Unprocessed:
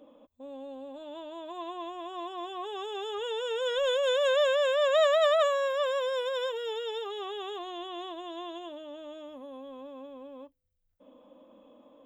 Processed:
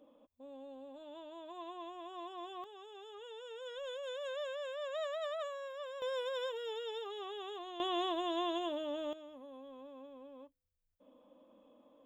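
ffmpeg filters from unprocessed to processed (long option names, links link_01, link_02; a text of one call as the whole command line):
ffmpeg -i in.wav -af "asetnsamples=nb_out_samples=441:pad=0,asendcmd='2.64 volume volume -16dB;6.02 volume volume -7dB;7.8 volume volume 4dB;9.13 volume volume -7.5dB',volume=-8dB" out.wav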